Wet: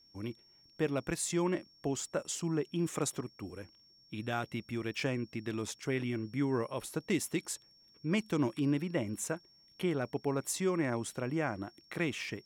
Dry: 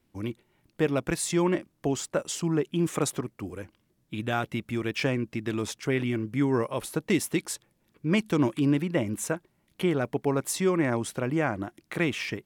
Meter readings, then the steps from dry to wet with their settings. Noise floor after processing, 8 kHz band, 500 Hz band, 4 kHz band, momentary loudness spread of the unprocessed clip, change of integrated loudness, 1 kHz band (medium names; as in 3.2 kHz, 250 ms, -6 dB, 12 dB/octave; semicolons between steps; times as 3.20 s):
-64 dBFS, -4.5 dB, -7.0 dB, -6.0 dB, 11 LU, -7.0 dB, -7.0 dB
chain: dynamic bell 7 kHz, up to +4 dB, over -50 dBFS, Q 2.2; whistle 5.5 kHz -54 dBFS; trim -7 dB